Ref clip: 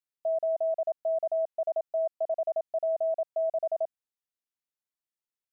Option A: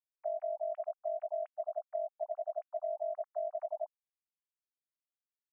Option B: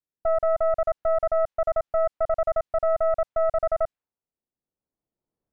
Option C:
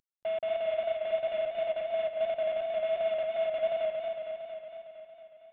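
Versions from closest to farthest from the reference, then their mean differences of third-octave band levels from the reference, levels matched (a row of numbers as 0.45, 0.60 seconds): A, B, C; 1.5, 4.5, 9.0 decibels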